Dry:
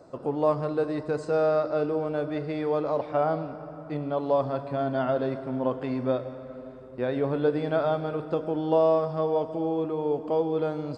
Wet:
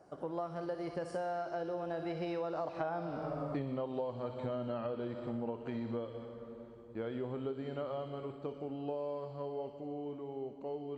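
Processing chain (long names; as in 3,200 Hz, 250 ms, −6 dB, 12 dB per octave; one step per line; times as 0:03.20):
source passing by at 0:03.26, 38 m/s, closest 14 metres
delay with a high-pass on its return 61 ms, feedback 64%, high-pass 3,000 Hz, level −4 dB
downward compressor 10 to 1, threshold −45 dBFS, peak gain reduction 21 dB
level +10.5 dB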